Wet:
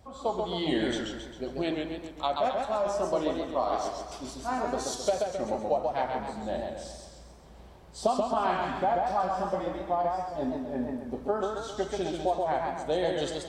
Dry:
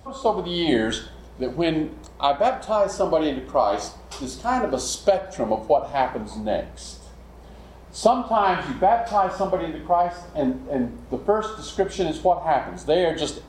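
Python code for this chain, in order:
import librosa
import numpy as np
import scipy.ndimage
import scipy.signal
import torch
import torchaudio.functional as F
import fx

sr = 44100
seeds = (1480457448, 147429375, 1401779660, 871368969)

y = fx.echo_warbled(x, sr, ms=134, feedback_pct=51, rate_hz=2.8, cents=113, wet_db=-3.5)
y = F.gain(torch.from_numpy(y), -9.0).numpy()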